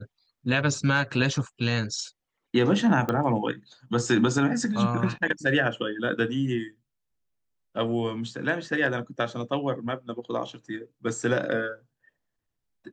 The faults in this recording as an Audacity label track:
3.090000	3.090000	pop -14 dBFS

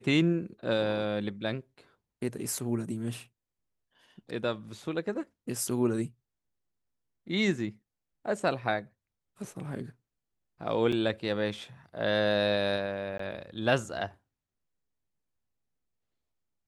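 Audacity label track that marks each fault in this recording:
10.920000	10.930000	gap 5.2 ms
13.180000	13.190000	gap 14 ms

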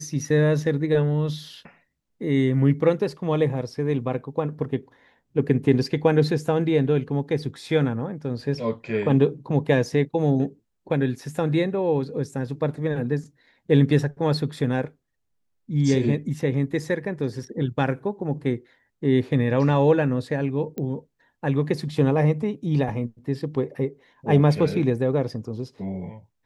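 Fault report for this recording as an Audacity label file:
20.780000	20.780000	pop -19 dBFS

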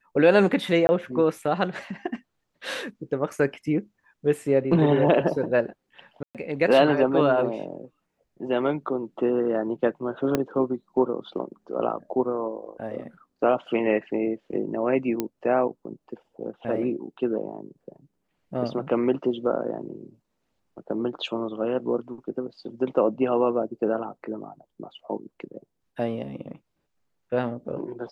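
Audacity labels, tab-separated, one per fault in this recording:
0.870000	0.890000	gap 20 ms
6.230000	6.350000	gap 0.117 s
10.350000	10.350000	pop -9 dBFS
15.200000	15.200000	pop -12 dBFS

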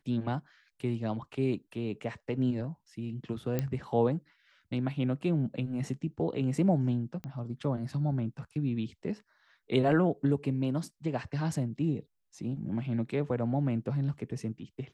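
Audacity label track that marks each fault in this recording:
3.590000	3.590000	pop -17 dBFS
7.240000	7.240000	pop -28 dBFS

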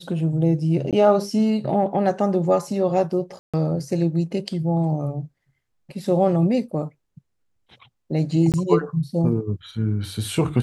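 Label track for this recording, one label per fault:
0.910000	0.930000	gap 17 ms
3.390000	3.540000	gap 0.146 s
8.520000	8.540000	gap 18 ms

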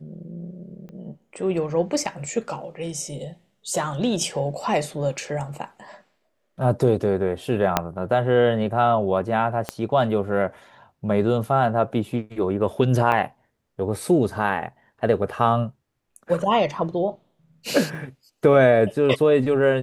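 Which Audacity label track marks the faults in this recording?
0.890000	0.890000	pop -30 dBFS
7.770000	7.770000	pop -3 dBFS
9.690000	9.690000	pop -11 dBFS
13.120000	13.120000	gap 2.1 ms
17.950000	17.950000	gap 2.2 ms

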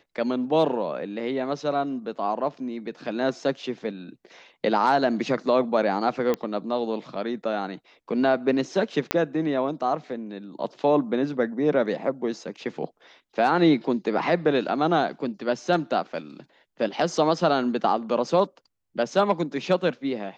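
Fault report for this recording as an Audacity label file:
6.340000	6.340000	pop -13 dBFS
9.110000	9.110000	pop -6 dBFS

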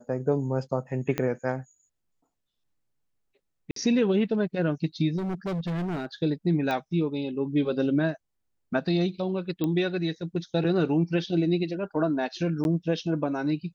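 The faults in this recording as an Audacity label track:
1.180000	1.180000	pop -13 dBFS
3.710000	3.760000	gap 53 ms
5.170000	6.060000	clipped -27 dBFS
6.710000	6.710000	pop -17 dBFS
9.640000	9.640000	pop -16 dBFS
12.640000	12.650000	gap 11 ms

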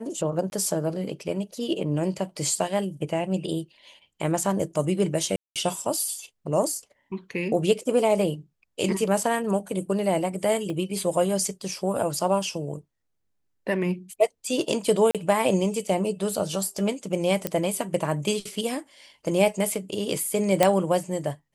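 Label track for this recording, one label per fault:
0.500000	0.520000	gap
5.360000	5.560000	gap 0.197 s
10.700000	10.700000	gap 2.1 ms
15.110000	15.150000	gap 37 ms
17.470000	17.470000	pop -9 dBFS
20.630000	20.630000	pop -4 dBFS

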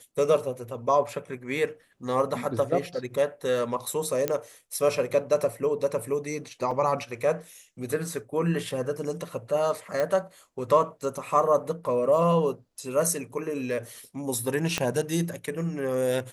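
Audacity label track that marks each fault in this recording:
4.280000	4.280000	pop -11 dBFS
6.710000	6.710000	gap 4.4 ms
10.000000	10.000000	pop -15 dBFS
14.780000	14.780000	pop -10 dBFS

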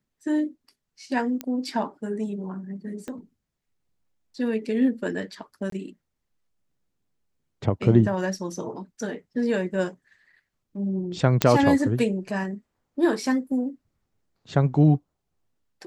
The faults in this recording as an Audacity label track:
1.410000	1.410000	pop -15 dBFS
3.080000	3.080000	pop -22 dBFS
5.700000	5.720000	gap 23 ms
11.420000	11.420000	pop -3 dBFS

